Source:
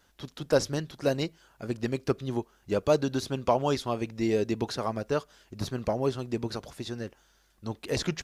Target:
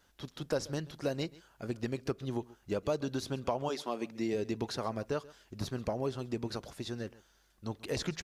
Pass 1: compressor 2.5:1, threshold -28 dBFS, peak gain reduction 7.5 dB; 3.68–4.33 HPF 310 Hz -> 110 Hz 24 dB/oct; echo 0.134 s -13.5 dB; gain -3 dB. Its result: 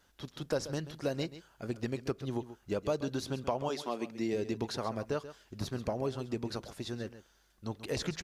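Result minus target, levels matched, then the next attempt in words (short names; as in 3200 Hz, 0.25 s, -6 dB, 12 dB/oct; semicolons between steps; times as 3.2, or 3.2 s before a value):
echo-to-direct +7 dB
compressor 2.5:1, threshold -28 dBFS, peak gain reduction 7.5 dB; 3.68–4.33 HPF 310 Hz -> 110 Hz 24 dB/oct; echo 0.134 s -20.5 dB; gain -3 dB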